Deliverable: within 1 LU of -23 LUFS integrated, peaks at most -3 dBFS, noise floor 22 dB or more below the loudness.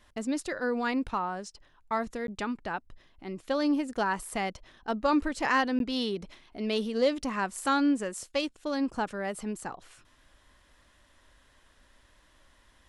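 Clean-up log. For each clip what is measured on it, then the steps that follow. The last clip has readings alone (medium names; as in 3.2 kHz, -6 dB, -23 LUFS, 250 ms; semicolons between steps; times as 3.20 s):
dropouts 2; longest dropout 12 ms; loudness -30.5 LUFS; peak level -14.0 dBFS; loudness target -23.0 LUFS
-> interpolate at 2.27/5.79 s, 12 ms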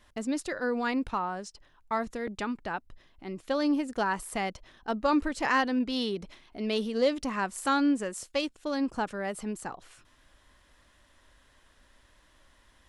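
dropouts 0; loudness -30.5 LUFS; peak level -14.0 dBFS; loudness target -23.0 LUFS
-> trim +7.5 dB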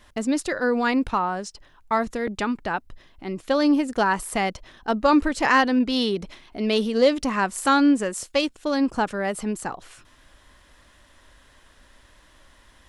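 loudness -23.0 LUFS; peak level -6.5 dBFS; noise floor -56 dBFS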